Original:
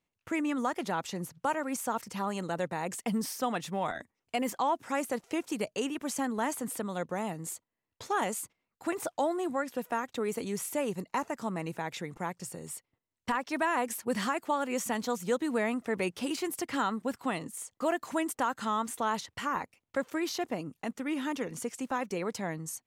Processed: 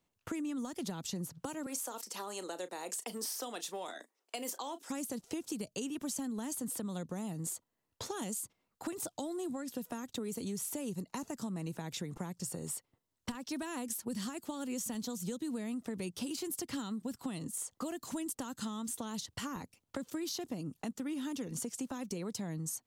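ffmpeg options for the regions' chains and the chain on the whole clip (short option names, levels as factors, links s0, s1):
-filter_complex "[0:a]asettb=1/sr,asplit=3[s0][s1][s2];[s0]atrim=end=1.664[s3];[s1]atrim=start=1.66:end=4.9,asetpts=PTS-STARTPTS,afade=t=in:d=0.004:c=qsin,afade=t=out:st=3.236:d=0.004:c=qsin,highpass=f=360:w=0.5412,highpass=f=360:w=1.3066,asplit=2[s4][s5];[s5]adelay=33,volume=0.2[s6];[s4][s6]amix=inputs=2:normalize=0,atrim=end_sample=142884[s7];[s2]atrim=start=4.896[s8];[s3][s7]acrossfade=d=0.004:c1=hsin:c2=qsin[s9];[s9][s8]acrossfade=d=0.004:c1=qsin:c2=hsin,acrossover=split=300|3000[s10][s11][s12];[s11]acompressor=threshold=0.00501:ratio=6[s13];[s10][s13][s12]amix=inputs=3:normalize=0,equalizer=f=2200:t=o:w=0.79:g=-6,acompressor=threshold=0.01:ratio=6,volume=1.68"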